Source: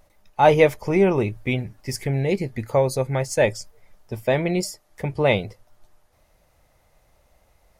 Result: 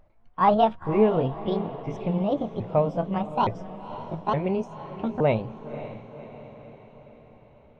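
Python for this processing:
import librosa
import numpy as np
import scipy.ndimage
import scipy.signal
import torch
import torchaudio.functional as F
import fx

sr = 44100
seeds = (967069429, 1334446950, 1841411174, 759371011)

y = fx.pitch_ramps(x, sr, semitones=9.0, every_ms=867)
y = fx.spacing_loss(y, sr, db_at_10k=43)
y = fx.echo_diffused(y, sr, ms=539, feedback_pct=55, wet_db=-13.0)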